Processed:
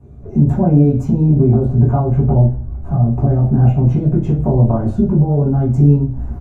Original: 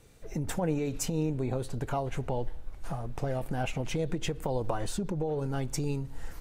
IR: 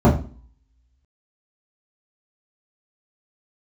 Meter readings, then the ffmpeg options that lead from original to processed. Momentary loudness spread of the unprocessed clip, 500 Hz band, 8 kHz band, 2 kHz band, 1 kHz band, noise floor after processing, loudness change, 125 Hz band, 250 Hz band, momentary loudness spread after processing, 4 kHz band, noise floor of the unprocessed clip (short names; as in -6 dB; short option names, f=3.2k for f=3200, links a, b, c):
8 LU, +12.0 dB, under -10 dB, n/a, +10.0 dB, -29 dBFS, +19.0 dB, +23.0 dB, +19.5 dB, 4 LU, under -10 dB, -44 dBFS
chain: -filter_complex "[0:a]asplit=2[a][b];[b]adelay=18,volume=-7dB[c];[a][c]amix=inputs=2:normalize=0[d];[1:a]atrim=start_sample=2205[e];[d][e]afir=irnorm=-1:irlink=0,volume=-15.5dB"